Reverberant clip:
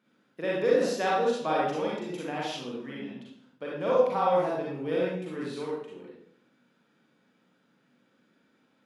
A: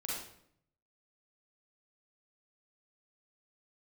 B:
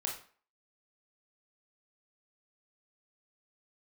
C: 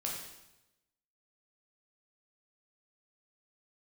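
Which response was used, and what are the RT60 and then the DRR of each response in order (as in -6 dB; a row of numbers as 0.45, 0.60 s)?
A; 0.65, 0.45, 0.95 s; -5.5, -1.0, -3.0 dB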